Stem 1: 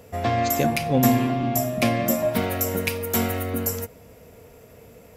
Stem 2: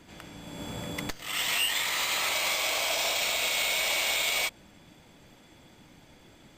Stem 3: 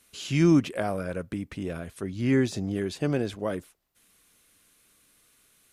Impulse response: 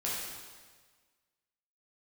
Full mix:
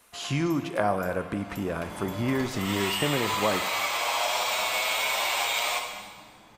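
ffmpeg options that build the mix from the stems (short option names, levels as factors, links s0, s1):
-filter_complex "[0:a]highpass=1200,acompressor=threshold=0.0178:ratio=6,volume=0.224[s0];[1:a]asplit=2[s1][s2];[s2]adelay=7.8,afreqshift=0.66[s3];[s1][s3]amix=inputs=2:normalize=1,adelay=1300,volume=0.631,asplit=2[s4][s5];[s5]volume=0.668[s6];[2:a]acompressor=threshold=0.0501:ratio=6,volume=0.944,asplit=3[s7][s8][s9];[s8]volume=0.237[s10];[s9]apad=whole_len=347779[s11];[s4][s11]sidechaincompress=threshold=0.0178:ratio=8:attack=16:release=1060[s12];[3:a]atrim=start_sample=2205[s13];[s6][s10]amix=inputs=2:normalize=0[s14];[s14][s13]afir=irnorm=-1:irlink=0[s15];[s0][s12][s7][s15]amix=inputs=4:normalize=0,equalizer=f=990:t=o:w=1.2:g=11"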